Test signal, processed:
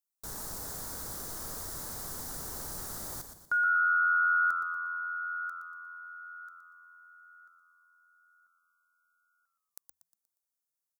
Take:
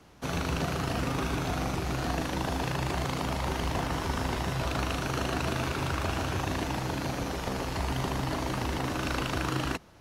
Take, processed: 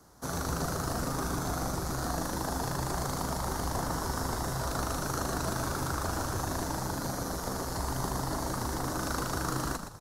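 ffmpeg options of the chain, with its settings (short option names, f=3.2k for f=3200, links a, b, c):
-filter_complex "[0:a]highshelf=f=2.1k:t=q:w=1.5:g=-13,asplit=6[a][b][c][d][e][f];[b]adelay=119,afreqshift=-85,volume=-8dB[g];[c]adelay=238,afreqshift=-170,volume=-15.5dB[h];[d]adelay=357,afreqshift=-255,volume=-23.1dB[i];[e]adelay=476,afreqshift=-340,volume=-30.6dB[j];[f]adelay=595,afreqshift=-425,volume=-38.1dB[k];[a][g][h][i][j][k]amix=inputs=6:normalize=0,aexciter=amount=12.3:drive=3:freq=3.8k,volume=-3.5dB"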